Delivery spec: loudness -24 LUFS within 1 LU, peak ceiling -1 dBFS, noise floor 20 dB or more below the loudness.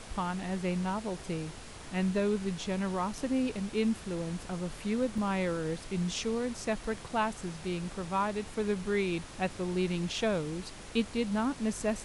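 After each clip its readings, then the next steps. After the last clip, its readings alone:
dropouts 1; longest dropout 2.1 ms; noise floor -46 dBFS; noise floor target -53 dBFS; loudness -33.0 LUFS; peak level -15.5 dBFS; loudness target -24.0 LUFS
-> interpolate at 5.18 s, 2.1 ms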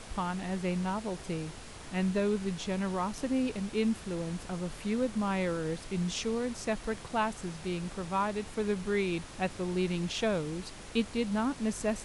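dropouts 0; noise floor -46 dBFS; noise floor target -53 dBFS
-> noise print and reduce 7 dB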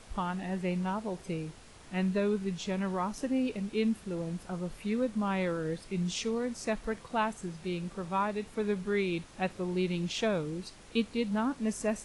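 noise floor -53 dBFS; loudness -33.0 LUFS; peak level -15.5 dBFS; loudness target -24.0 LUFS
-> trim +9 dB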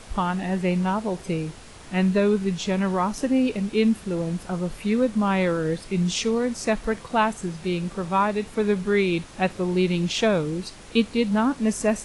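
loudness -24.0 LUFS; peak level -6.5 dBFS; noise floor -44 dBFS

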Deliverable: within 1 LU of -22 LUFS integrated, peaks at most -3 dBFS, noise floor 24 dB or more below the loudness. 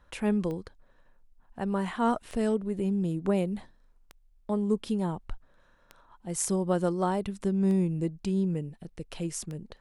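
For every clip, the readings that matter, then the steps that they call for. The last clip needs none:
clicks found 6; loudness -30.0 LUFS; peak level -12.0 dBFS; loudness target -22.0 LUFS
-> de-click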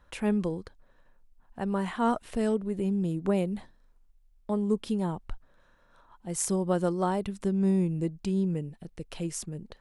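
clicks found 0; loudness -29.5 LUFS; peak level -12.0 dBFS; loudness target -22.0 LUFS
-> trim +7.5 dB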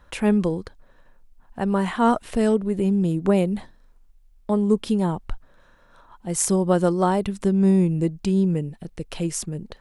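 loudness -22.5 LUFS; peak level -4.5 dBFS; noise floor -55 dBFS

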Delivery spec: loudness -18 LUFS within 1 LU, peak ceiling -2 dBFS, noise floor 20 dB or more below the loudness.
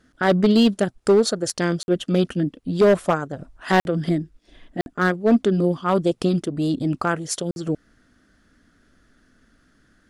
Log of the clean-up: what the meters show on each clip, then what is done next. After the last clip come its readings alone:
clipped samples 1.5%; clipping level -10.0 dBFS; dropouts 4; longest dropout 51 ms; loudness -21.0 LUFS; peak level -10.0 dBFS; loudness target -18.0 LUFS
-> clip repair -10 dBFS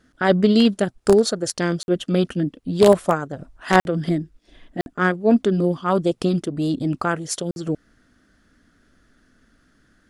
clipped samples 0.0%; dropouts 4; longest dropout 51 ms
-> interpolate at 1.83/3.80/4.81/7.51 s, 51 ms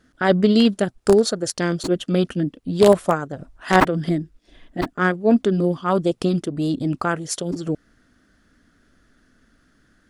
dropouts 0; loudness -20.5 LUFS; peak level -1.0 dBFS; loudness target -18.0 LUFS
-> trim +2.5 dB; peak limiter -2 dBFS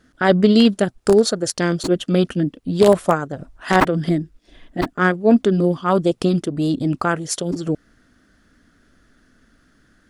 loudness -18.5 LUFS; peak level -2.0 dBFS; noise floor -59 dBFS

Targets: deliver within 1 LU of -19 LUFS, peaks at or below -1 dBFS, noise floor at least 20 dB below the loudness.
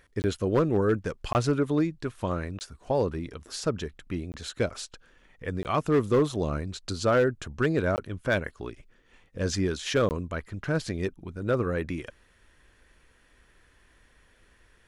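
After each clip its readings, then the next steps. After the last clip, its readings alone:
clipped samples 0.3%; clipping level -16.0 dBFS; dropouts 7; longest dropout 19 ms; loudness -28.5 LUFS; peak level -16.0 dBFS; loudness target -19.0 LUFS
-> clip repair -16 dBFS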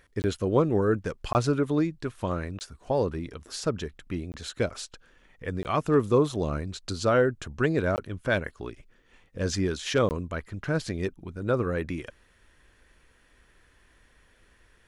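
clipped samples 0.0%; dropouts 7; longest dropout 19 ms
-> interpolate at 0.22/1.33/2.59/4.32/5.63/7.96/10.09 s, 19 ms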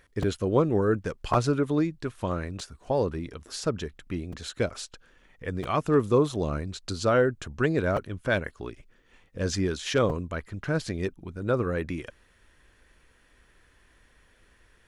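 dropouts 0; loudness -28.0 LUFS; peak level -8.0 dBFS; loudness target -19.0 LUFS
-> trim +9 dB; peak limiter -1 dBFS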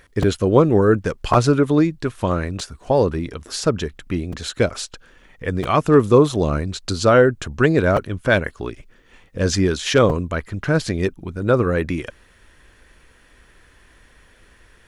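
loudness -19.0 LUFS; peak level -1.0 dBFS; noise floor -53 dBFS

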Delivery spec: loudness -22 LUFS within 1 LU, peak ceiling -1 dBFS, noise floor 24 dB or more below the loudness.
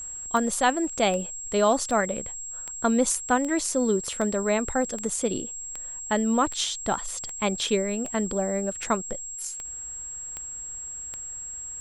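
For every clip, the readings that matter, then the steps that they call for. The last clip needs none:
clicks found 15; steady tone 7.6 kHz; tone level -34 dBFS; loudness -27.0 LUFS; peak level -8.0 dBFS; loudness target -22.0 LUFS
-> de-click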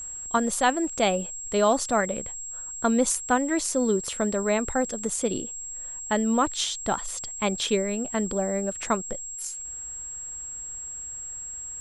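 clicks found 0; steady tone 7.6 kHz; tone level -34 dBFS
-> band-stop 7.6 kHz, Q 30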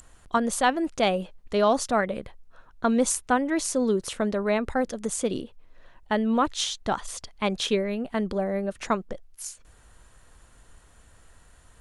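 steady tone not found; loudness -26.5 LUFS; peak level -8.5 dBFS; loudness target -22.0 LUFS
-> trim +4.5 dB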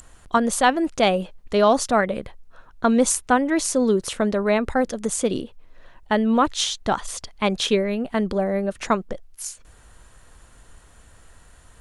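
loudness -22.0 LUFS; peak level -4.0 dBFS; noise floor -51 dBFS

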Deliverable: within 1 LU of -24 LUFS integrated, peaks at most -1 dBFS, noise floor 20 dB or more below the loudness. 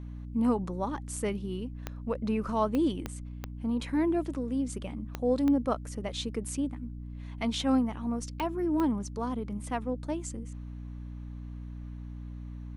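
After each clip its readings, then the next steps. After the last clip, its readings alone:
clicks found 8; hum 60 Hz; highest harmonic 300 Hz; hum level -38 dBFS; loudness -31.5 LUFS; peak level -15.0 dBFS; loudness target -24.0 LUFS
-> de-click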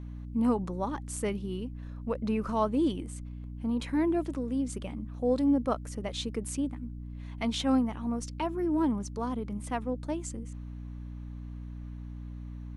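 clicks found 0; hum 60 Hz; highest harmonic 300 Hz; hum level -38 dBFS
-> hum notches 60/120/180/240/300 Hz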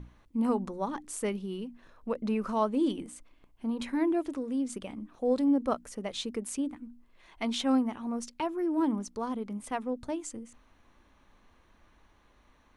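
hum not found; loudness -32.0 LUFS; peak level -16.0 dBFS; loudness target -24.0 LUFS
-> trim +8 dB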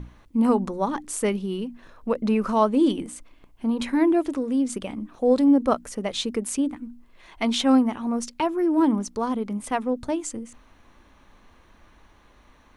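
loudness -24.0 LUFS; peak level -8.0 dBFS; noise floor -56 dBFS

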